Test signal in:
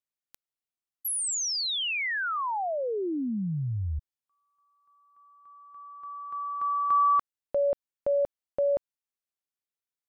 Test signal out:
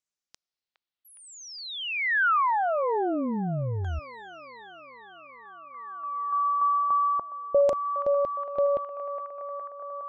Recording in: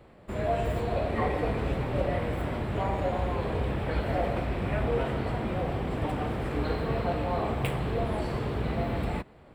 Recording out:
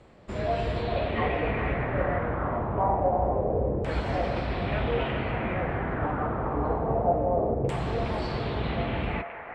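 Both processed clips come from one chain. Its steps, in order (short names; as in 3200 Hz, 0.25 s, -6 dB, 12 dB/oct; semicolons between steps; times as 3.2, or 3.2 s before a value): band-limited delay 0.413 s, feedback 71%, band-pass 1200 Hz, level -7.5 dB; LFO low-pass saw down 0.26 Hz 470–7300 Hz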